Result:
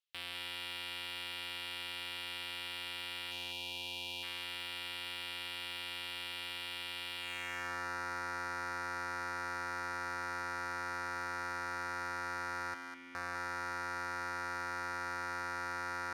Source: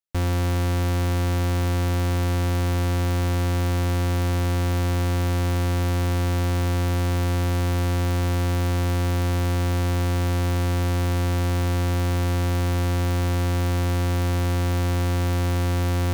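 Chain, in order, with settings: band-pass sweep 3100 Hz -> 1500 Hz, 7.18–7.71; limiter -33.5 dBFS, peak gain reduction 7.5 dB; 3.31–4.23 spectral gain 990–2300 Hz -17 dB; 12.74–13.15 vowel filter i; hard clip -38 dBFS, distortion -13 dB; on a send: thinning echo 0.202 s, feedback 32%, high-pass 590 Hz, level -6 dB; on the sum: gain +8.5 dB

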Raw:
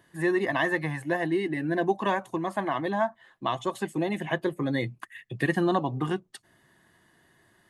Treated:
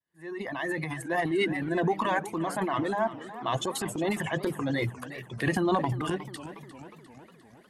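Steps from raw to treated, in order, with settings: opening faded in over 1.21 s; notches 50/100/150/200/250/300 Hz; reverb removal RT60 1.1 s; transient shaper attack -4 dB, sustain +11 dB; warbling echo 0.357 s, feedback 59%, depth 165 cents, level -14.5 dB

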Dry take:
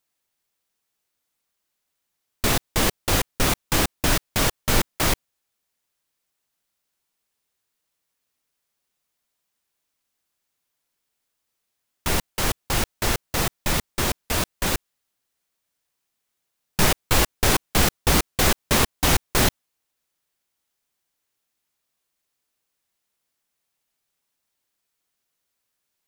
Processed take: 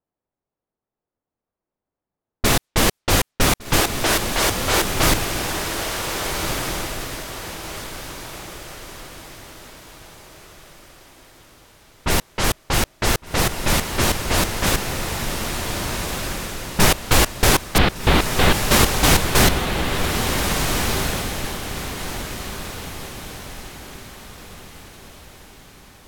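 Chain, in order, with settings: 3.8–4.86 elliptic high-pass 320 Hz; low-pass opened by the level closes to 710 Hz, open at -19.5 dBFS; 17.78–18.62 steep low-pass 4100 Hz; on a send: diffused feedback echo 1.571 s, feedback 41%, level -4 dB; on the sum: gain +4 dB

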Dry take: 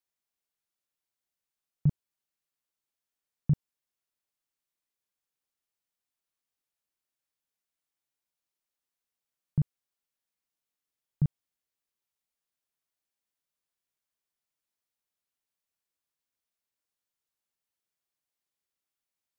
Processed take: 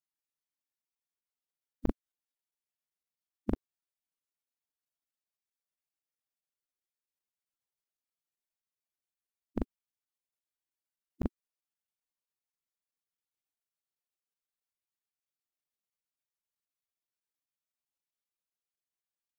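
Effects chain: spectral gate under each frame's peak -15 dB weak; crackling interface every 0.13 s, samples 512, zero, from 0.82; gain +13.5 dB

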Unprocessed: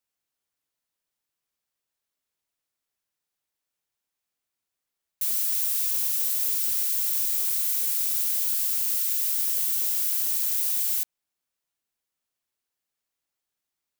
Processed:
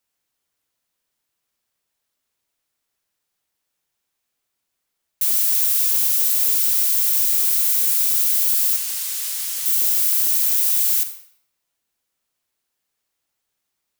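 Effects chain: 8.76–9.66 high shelf 12000 Hz -11.5 dB; reverb RT60 0.85 s, pre-delay 41 ms, DRR 9 dB; gain +7 dB

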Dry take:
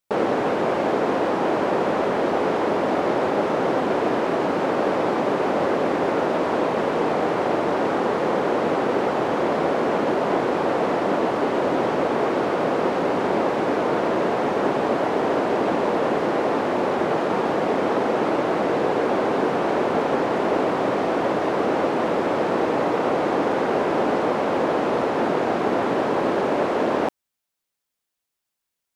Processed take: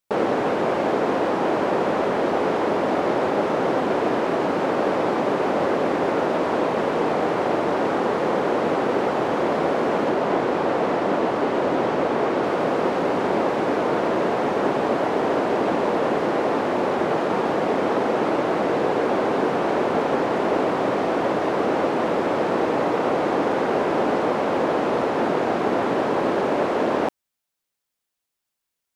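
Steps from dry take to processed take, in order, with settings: 10.09–12.44 high shelf 8200 Hz -4.5 dB

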